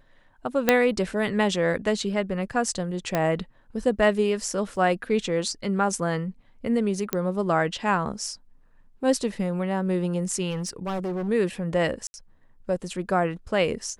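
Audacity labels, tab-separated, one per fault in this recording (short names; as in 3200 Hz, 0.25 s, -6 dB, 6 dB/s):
0.690000	0.690000	pop -3 dBFS
3.150000	3.150000	pop -10 dBFS
4.760000	4.760000	gap 4.6 ms
7.130000	7.130000	pop -9 dBFS
10.500000	11.290000	clipped -25.5 dBFS
12.070000	12.140000	gap 70 ms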